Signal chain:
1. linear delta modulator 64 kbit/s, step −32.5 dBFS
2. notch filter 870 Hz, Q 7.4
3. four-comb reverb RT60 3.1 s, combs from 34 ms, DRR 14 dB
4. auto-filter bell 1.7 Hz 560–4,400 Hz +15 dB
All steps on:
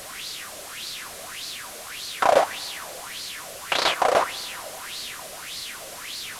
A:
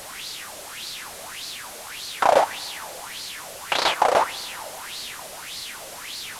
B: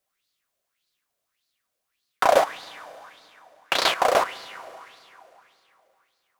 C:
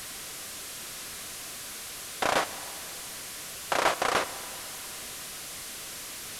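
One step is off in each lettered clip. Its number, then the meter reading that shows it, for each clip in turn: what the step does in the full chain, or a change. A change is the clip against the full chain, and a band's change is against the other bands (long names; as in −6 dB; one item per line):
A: 2, 1 kHz band +2.0 dB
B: 1, 8 kHz band −5.5 dB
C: 4, 500 Hz band −6.5 dB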